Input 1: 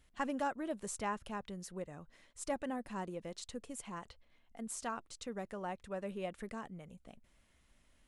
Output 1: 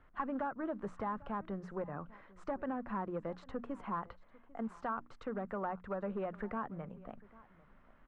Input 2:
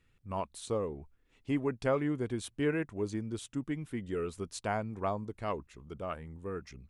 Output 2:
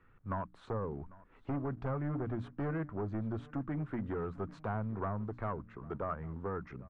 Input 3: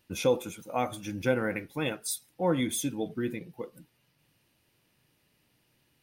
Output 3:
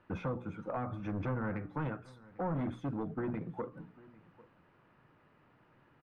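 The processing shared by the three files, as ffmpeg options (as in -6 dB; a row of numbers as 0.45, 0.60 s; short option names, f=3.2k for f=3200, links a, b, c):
-filter_complex "[0:a]equalizer=f=61:t=o:w=0.43:g=-11.5,bandreject=f=60:t=h:w=6,bandreject=f=120:t=h:w=6,bandreject=f=180:t=h:w=6,bandreject=f=240:t=h:w=6,bandreject=f=300:t=h:w=6,acrossover=split=190[a][b];[b]acompressor=threshold=-42dB:ratio=12[c];[a][c]amix=inputs=2:normalize=0,aeval=exprs='0.0531*(cos(1*acos(clip(val(0)/0.0531,-1,1)))-cos(1*PI/2))+0.00299*(cos(3*acos(clip(val(0)/0.0531,-1,1)))-cos(3*PI/2))+0.00668*(cos(5*acos(clip(val(0)/0.0531,-1,1)))-cos(5*PI/2))+0.0015*(cos(6*acos(clip(val(0)/0.0531,-1,1)))-cos(6*PI/2))':c=same,acrusher=bits=7:mode=log:mix=0:aa=0.000001,asoftclip=type=hard:threshold=-35dB,lowpass=f=1.3k:t=q:w=2.3,asplit=2[d][e];[e]aecho=0:1:797:0.0841[f];[d][f]amix=inputs=2:normalize=0,volume=3dB"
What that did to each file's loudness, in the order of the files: +1.5, -3.0, -7.0 LU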